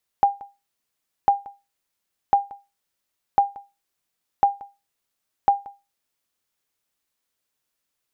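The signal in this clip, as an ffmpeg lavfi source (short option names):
-f lavfi -i "aevalsrc='0.398*(sin(2*PI*802*mod(t,1.05))*exp(-6.91*mod(t,1.05)/0.25)+0.0794*sin(2*PI*802*max(mod(t,1.05)-0.18,0))*exp(-6.91*max(mod(t,1.05)-0.18,0)/0.25))':d=6.3:s=44100"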